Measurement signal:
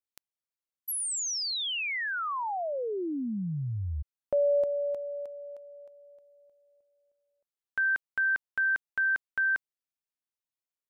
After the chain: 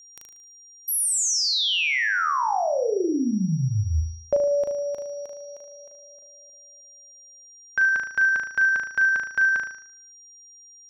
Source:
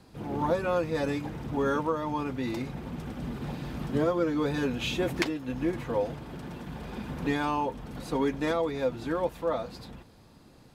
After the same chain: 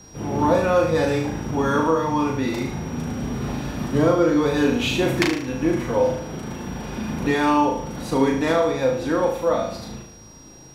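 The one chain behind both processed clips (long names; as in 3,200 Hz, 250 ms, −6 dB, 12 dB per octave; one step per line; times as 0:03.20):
flutter between parallel walls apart 6.4 metres, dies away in 0.57 s
steady tone 5,700 Hz −53 dBFS
level +6.5 dB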